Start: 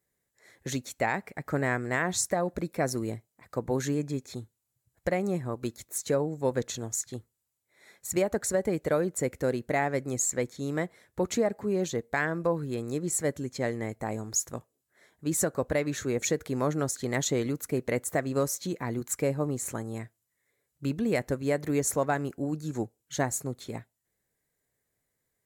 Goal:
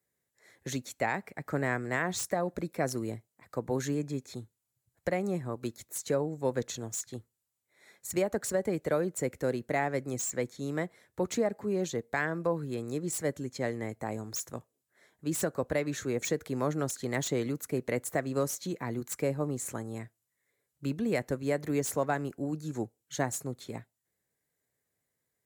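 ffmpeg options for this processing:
-filter_complex "[0:a]highpass=73,acrossover=split=280|970|2400[a][b][c][d];[d]aeval=exprs='0.0473*(abs(mod(val(0)/0.0473+3,4)-2)-1)':c=same[e];[a][b][c][e]amix=inputs=4:normalize=0,volume=-2.5dB"

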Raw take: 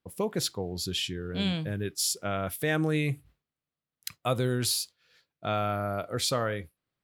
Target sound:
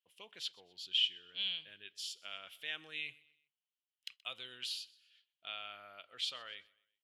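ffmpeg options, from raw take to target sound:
-af "bandpass=f=3k:t=q:w=6.8:csg=0,aecho=1:1:126|252|378:0.075|0.03|0.012,volume=4dB"

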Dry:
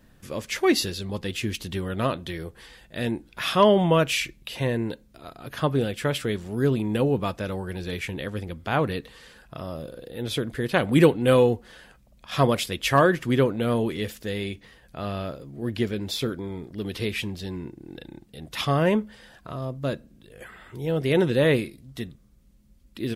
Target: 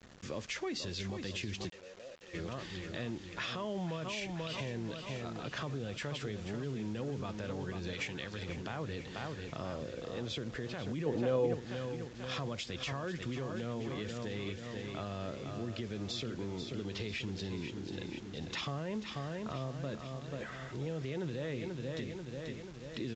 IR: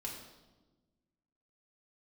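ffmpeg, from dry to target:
-filter_complex "[0:a]acrossover=split=140[a][b];[b]acompressor=threshold=-31dB:ratio=2[c];[a][c]amix=inputs=2:normalize=0,aecho=1:1:487|974|1461|1948|2435|2922:0.335|0.171|0.0871|0.0444|0.0227|0.0116,alimiter=limit=-24dB:level=0:latency=1:release=53,asettb=1/sr,asplit=3[d][e][f];[d]atrim=end=7.934[g];[e]atrim=start=7.93:end=8.49,asetpts=PTS-STARTPTS,afade=t=in:d=0.004:c=qsin,afade=t=out:st=0.556:d=0.004:c=qsin,tiltshelf=f=1.2k:g=-5.5[h];[f]atrim=start=8.486[i];[g][h]acrossfade=d=0.004:c1=hsin:c2=qsin[j];[j][i]acrossfade=d=0.004:c1=qsin:c2=hsin,acompressor=threshold=-39dB:ratio=2,asplit=3[k][l][m];[k]afade=t=out:st=1.68:d=0.02[n];[l]asplit=3[o][p][q];[o]bandpass=f=530:t=q:w=8,volume=0dB[r];[p]bandpass=f=1.84k:t=q:w=8,volume=-6dB[s];[q]bandpass=f=2.48k:t=q:w=8,volume=-9dB[t];[r][s][t]amix=inputs=3:normalize=0,afade=t=in:st=1.68:d=0.02,afade=t=out:st=2.33:d=0.02[u];[m]afade=t=in:st=2.33:d=0.02[v];[n][u][v]amix=inputs=3:normalize=0,asettb=1/sr,asplit=3[w][x][y];[w]atrim=end=11.064[z];[x]atrim=start=11.06:end=11.54,asetpts=PTS-STARTPTS,afade=t=in:d=0.004:c=qsin,afade=t=out:st=0.476:d=0.004:c=qsin,equalizer=f=530:t=o:w=2.3:g=10[aa];[y]atrim=start=11.536[ab];[z][aa]acrossfade=d=0.004:c1=hsin:c2=qsin[ac];[ac][ab]acrossfade=d=0.004:c1=qsin:c2=hsin,highpass=f=54:p=1,acrusher=bits=8:mix=0:aa=0.000001,aresample=16000,aresample=44100"

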